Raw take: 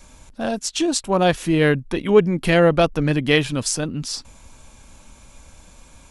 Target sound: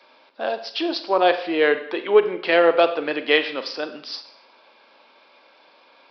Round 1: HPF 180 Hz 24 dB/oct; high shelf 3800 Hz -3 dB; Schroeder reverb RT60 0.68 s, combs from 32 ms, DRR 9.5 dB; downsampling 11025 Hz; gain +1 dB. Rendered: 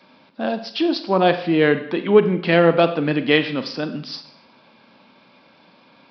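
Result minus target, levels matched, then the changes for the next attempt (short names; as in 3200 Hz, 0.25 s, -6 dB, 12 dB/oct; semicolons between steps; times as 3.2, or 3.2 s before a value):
250 Hz band +6.0 dB
change: HPF 380 Hz 24 dB/oct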